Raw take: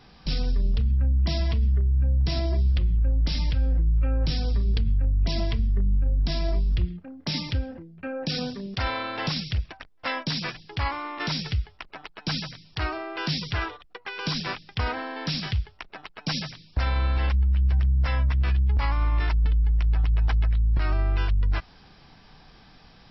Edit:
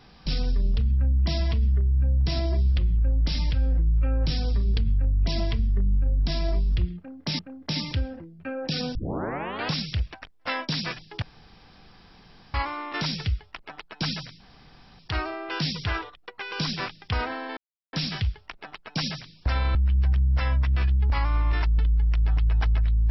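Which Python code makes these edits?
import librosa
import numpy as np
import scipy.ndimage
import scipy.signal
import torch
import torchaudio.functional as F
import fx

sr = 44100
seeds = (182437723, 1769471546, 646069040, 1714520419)

y = fx.edit(x, sr, fx.repeat(start_s=6.97, length_s=0.42, count=2),
    fx.tape_start(start_s=8.53, length_s=0.75),
    fx.insert_room_tone(at_s=10.8, length_s=1.32),
    fx.insert_room_tone(at_s=12.66, length_s=0.59),
    fx.insert_silence(at_s=15.24, length_s=0.36),
    fx.cut(start_s=17.06, length_s=0.36), tone=tone)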